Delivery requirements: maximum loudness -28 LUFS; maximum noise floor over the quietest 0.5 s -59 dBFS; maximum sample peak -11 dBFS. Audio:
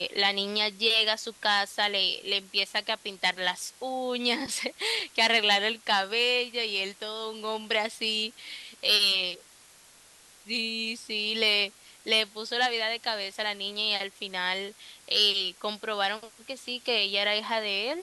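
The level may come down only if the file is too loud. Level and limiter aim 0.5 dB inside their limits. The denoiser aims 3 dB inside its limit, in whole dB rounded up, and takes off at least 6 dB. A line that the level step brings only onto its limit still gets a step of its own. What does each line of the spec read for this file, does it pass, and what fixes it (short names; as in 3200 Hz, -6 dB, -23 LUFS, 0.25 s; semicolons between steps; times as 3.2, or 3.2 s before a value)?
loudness -26.5 LUFS: fail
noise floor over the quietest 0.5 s -55 dBFS: fail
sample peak -9.5 dBFS: fail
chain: denoiser 6 dB, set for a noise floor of -55 dBFS; gain -2 dB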